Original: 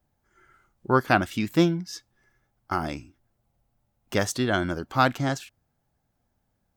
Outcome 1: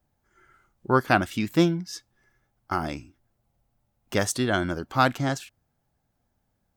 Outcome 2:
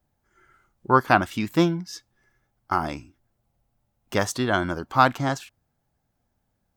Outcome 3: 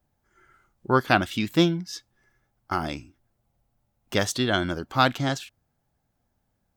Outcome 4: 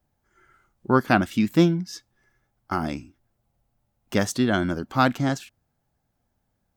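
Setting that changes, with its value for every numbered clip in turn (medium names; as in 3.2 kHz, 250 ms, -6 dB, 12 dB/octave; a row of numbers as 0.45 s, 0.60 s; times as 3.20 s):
dynamic bell, frequency: 9.4 kHz, 1 kHz, 3.5 kHz, 220 Hz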